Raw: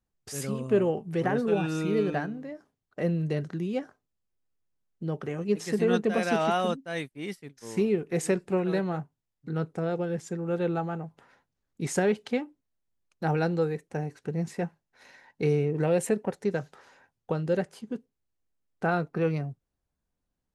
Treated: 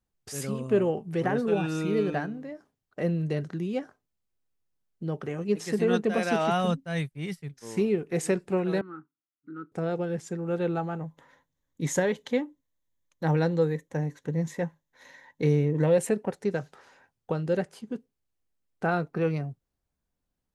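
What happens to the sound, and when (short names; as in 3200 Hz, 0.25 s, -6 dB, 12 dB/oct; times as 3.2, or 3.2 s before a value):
6.51–7.54 resonant low shelf 200 Hz +6 dB, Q 3
8.81–9.72 double band-pass 640 Hz, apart 2.1 oct
11–15.98 ripple EQ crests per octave 1.1, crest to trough 8 dB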